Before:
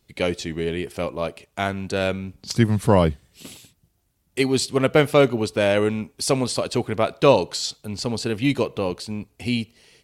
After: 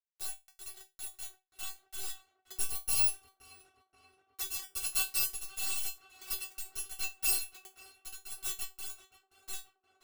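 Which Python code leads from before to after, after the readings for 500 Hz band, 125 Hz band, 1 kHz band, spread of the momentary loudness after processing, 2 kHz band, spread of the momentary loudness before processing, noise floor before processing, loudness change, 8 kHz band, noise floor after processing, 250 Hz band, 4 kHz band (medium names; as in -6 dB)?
-40.0 dB, -34.0 dB, -24.5 dB, 18 LU, -15.0 dB, 13 LU, -67 dBFS, -11.5 dB, -2.0 dB, -81 dBFS, under -40 dB, -12.0 dB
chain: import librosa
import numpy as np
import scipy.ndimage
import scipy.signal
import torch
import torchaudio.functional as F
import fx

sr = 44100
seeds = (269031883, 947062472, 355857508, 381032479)

p1 = fx.bit_reversed(x, sr, seeds[0], block=256)
p2 = np.where(np.abs(p1) >= 10.0 ** (-16.5 / 20.0), p1, 0.0)
p3 = fx.comb_fb(p2, sr, f0_hz=380.0, decay_s=0.2, harmonics='all', damping=0.0, mix_pct=100)
y = p3 + fx.echo_tape(p3, sr, ms=527, feedback_pct=77, wet_db=-12.5, lp_hz=2000.0, drive_db=21.0, wow_cents=29, dry=0)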